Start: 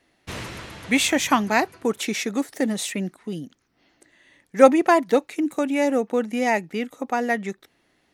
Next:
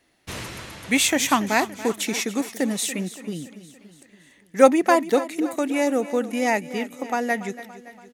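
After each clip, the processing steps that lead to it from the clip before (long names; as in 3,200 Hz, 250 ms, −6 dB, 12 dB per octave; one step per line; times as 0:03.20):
high-shelf EQ 6,000 Hz +7.5 dB
repeating echo 284 ms, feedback 55%, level −15 dB
level −1 dB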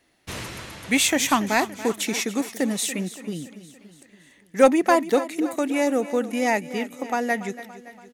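soft clipping −4.5 dBFS, distortion −22 dB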